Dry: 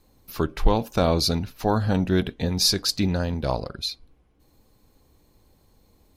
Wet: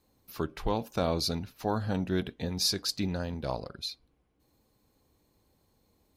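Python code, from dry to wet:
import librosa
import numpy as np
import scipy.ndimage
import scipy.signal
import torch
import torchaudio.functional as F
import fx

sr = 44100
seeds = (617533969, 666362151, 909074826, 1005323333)

y = fx.highpass(x, sr, hz=79.0, slope=6)
y = y * librosa.db_to_amplitude(-7.5)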